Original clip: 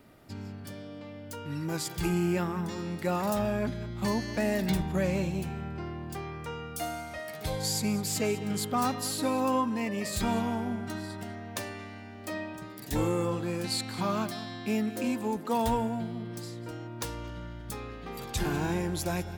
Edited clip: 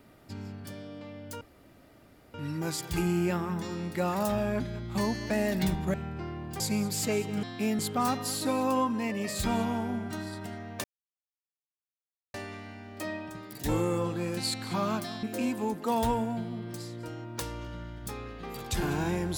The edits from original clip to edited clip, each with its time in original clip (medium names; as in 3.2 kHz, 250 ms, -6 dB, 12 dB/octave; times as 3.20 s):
1.41 s: insert room tone 0.93 s
5.01–5.53 s: delete
6.19–7.73 s: delete
11.61 s: insert silence 1.50 s
14.50–14.86 s: move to 8.56 s